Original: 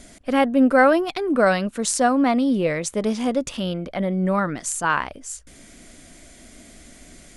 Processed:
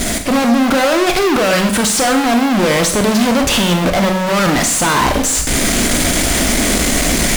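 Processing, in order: level rider; peak limiter -9.5 dBFS, peak gain reduction 8.5 dB; reverse; compression, threshold -24 dBFS, peak gain reduction 10.5 dB; reverse; fuzz box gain 50 dB, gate -52 dBFS; Schroeder reverb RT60 0.6 s, combs from 30 ms, DRR 5.5 dB; slew-rate limiter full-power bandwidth 1.5 kHz

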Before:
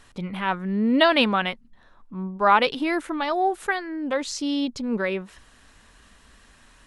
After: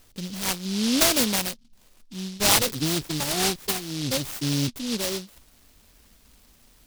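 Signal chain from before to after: 2.39–4.69 s: octave divider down 1 oct, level +2 dB; delay time shaken by noise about 4.1 kHz, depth 0.28 ms; trim -2.5 dB

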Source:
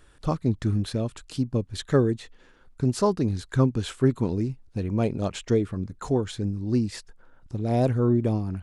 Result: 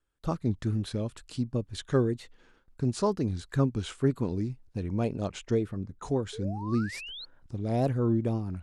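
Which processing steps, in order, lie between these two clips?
6.33–7.25 s: painted sound rise 420–4500 Hz -37 dBFS; wow and flutter 89 cents; gate with hold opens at -45 dBFS; 5.27–6.03 s: tape noise reduction on one side only decoder only; trim -4.5 dB

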